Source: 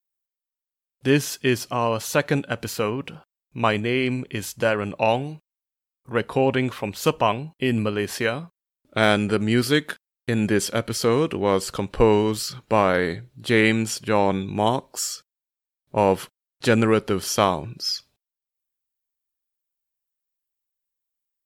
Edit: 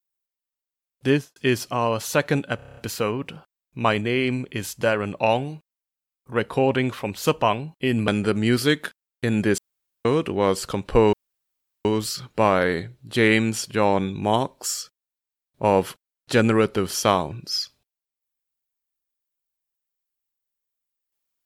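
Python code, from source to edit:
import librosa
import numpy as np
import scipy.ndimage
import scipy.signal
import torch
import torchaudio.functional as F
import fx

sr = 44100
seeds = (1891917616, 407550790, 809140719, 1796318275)

y = fx.studio_fade_out(x, sr, start_s=1.07, length_s=0.29)
y = fx.edit(y, sr, fx.stutter(start_s=2.56, slice_s=0.03, count=8),
    fx.cut(start_s=7.87, length_s=1.26),
    fx.room_tone_fill(start_s=10.63, length_s=0.47),
    fx.insert_room_tone(at_s=12.18, length_s=0.72), tone=tone)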